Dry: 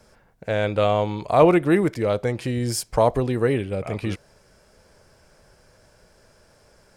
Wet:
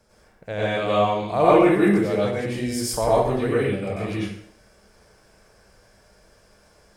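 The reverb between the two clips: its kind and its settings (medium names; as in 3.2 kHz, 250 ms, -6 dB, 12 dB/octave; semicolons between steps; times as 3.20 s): plate-style reverb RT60 0.6 s, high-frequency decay 0.95×, pre-delay 85 ms, DRR -7.5 dB; trim -7 dB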